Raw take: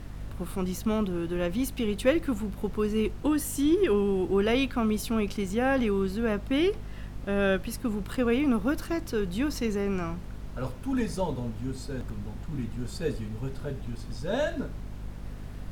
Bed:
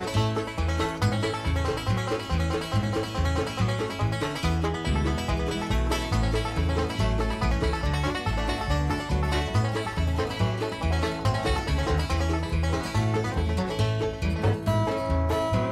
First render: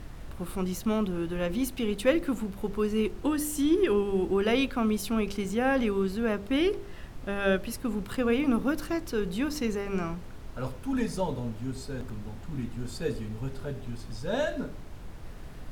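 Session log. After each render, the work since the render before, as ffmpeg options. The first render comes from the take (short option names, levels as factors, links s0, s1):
-af "bandreject=f=50:t=h:w=4,bandreject=f=100:t=h:w=4,bandreject=f=150:t=h:w=4,bandreject=f=200:t=h:w=4,bandreject=f=250:t=h:w=4,bandreject=f=300:t=h:w=4,bandreject=f=350:t=h:w=4,bandreject=f=400:t=h:w=4,bandreject=f=450:t=h:w=4,bandreject=f=500:t=h:w=4,bandreject=f=550:t=h:w=4,bandreject=f=600:t=h:w=4"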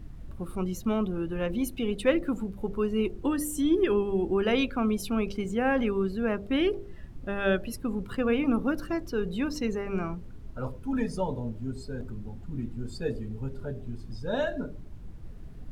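-af "afftdn=nr=12:nf=-42"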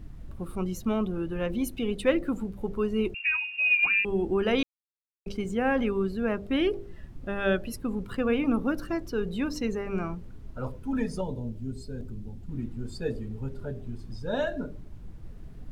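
-filter_complex "[0:a]asettb=1/sr,asplit=3[s0][s1][s2];[s0]atrim=end=3.144[s3];[s1]atrim=start=3.14:end=4.05,asetpts=PTS-STARTPTS,afade=t=in:d=0.004:c=qsin,afade=t=out:st=0.906:d=0.004:c=qsin,lowpass=f=2400:t=q:w=0.5098,lowpass=f=2400:t=q:w=0.6013,lowpass=f=2400:t=q:w=0.9,lowpass=f=2400:t=q:w=2.563,afreqshift=-2800[s4];[s2]atrim=start=4.046[s5];[s3][s4]acrossfade=d=0.004:c1=hsin:c2=qsin[s6];[s6][s5]acrossfade=d=0.004:c1=qsin:c2=hsin,asettb=1/sr,asplit=3[s7][s8][s9];[s7]atrim=end=11.214[s10];[s8]atrim=start=11.21:end=12.49,asetpts=PTS-STARTPTS,afade=t=in:d=0.004:c=qsin,afade=t=out:st=1.276:d=0.004:c=qsin,equalizer=f=1200:w=0.64:g=-8.5[s11];[s9]atrim=start=12.486[s12];[s10][s11]acrossfade=d=0.004:c1=hsin:c2=qsin[s13];[s13][s12]acrossfade=d=0.004:c1=qsin:c2=hsin,asplit=3[s14][s15][s16];[s14]atrim=end=4.63,asetpts=PTS-STARTPTS,afade=t=out:st=4.626:d=0.004:c=hsin[s17];[s15]atrim=start=4.63:end=5.26,asetpts=PTS-STARTPTS,volume=0[s18];[s16]atrim=start=5.26,asetpts=PTS-STARTPTS,afade=t=in:d=0.004:c=hsin[s19];[s17][s18][s19]concat=n=3:v=0:a=1"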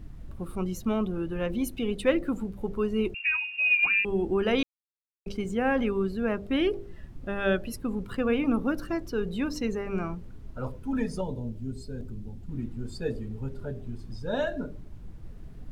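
-af anull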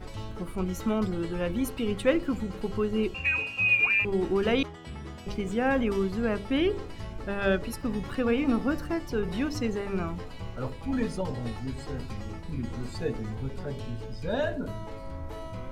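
-filter_complex "[1:a]volume=0.178[s0];[0:a][s0]amix=inputs=2:normalize=0"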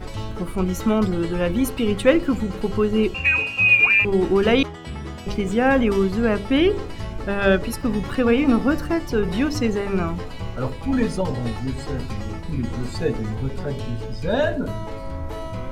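-af "volume=2.51"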